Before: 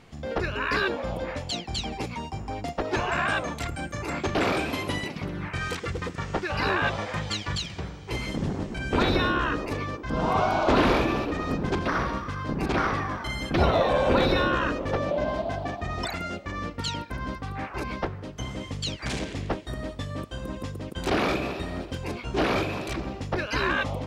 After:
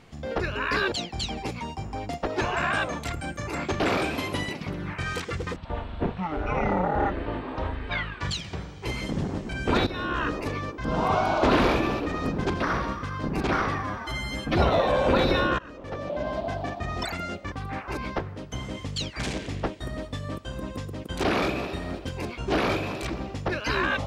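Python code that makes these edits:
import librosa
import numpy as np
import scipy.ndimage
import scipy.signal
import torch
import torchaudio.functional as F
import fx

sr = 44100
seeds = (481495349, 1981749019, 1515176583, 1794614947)

y = fx.edit(x, sr, fx.cut(start_s=0.92, length_s=0.55),
    fx.speed_span(start_s=6.11, length_s=1.35, speed=0.51),
    fx.fade_in_from(start_s=9.12, length_s=0.4, floor_db=-15.0),
    fx.stretch_span(start_s=13.08, length_s=0.48, factor=1.5),
    fx.fade_in_from(start_s=14.6, length_s=0.92, floor_db=-23.5),
    fx.cut(start_s=16.53, length_s=0.85), tone=tone)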